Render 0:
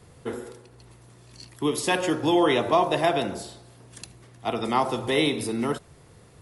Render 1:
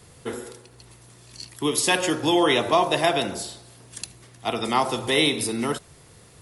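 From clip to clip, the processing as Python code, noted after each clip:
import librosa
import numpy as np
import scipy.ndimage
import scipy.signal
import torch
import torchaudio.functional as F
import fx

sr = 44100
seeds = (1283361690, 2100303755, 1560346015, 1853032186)

y = fx.high_shelf(x, sr, hz=2200.0, db=8.5)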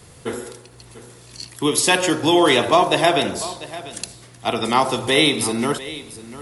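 y = x + 10.0 ** (-16.0 / 20.0) * np.pad(x, (int(695 * sr / 1000.0), 0))[:len(x)]
y = y * librosa.db_to_amplitude(4.5)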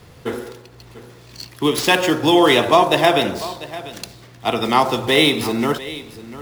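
y = scipy.ndimage.median_filter(x, 5, mode='constant')
y = y * librosa.db_to_amplitude(2.0)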